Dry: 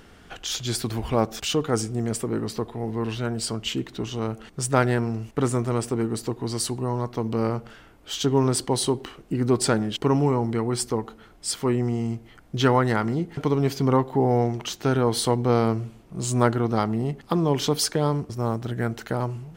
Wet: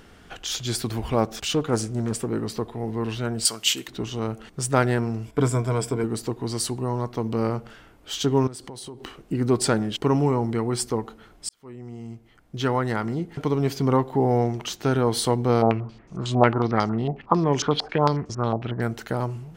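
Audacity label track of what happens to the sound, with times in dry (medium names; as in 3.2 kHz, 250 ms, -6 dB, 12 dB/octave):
1.270000	2.280000	loudspeaker Doppler distortion depth 0.3 ms
3.450000	3.880000	tilt EQ +4.5 dB/octave
5.250000	6.040000	rippled EQ curve crests per octave 1.7, crest to trough 10 dB
8.470000	9.050000	compression 8:1, threshold -35 dBFS
11.490000	14.390000	fade in equal-power
15.620000	18.820000	step-sequenced low-pass 11 Hz 750–6400 Hz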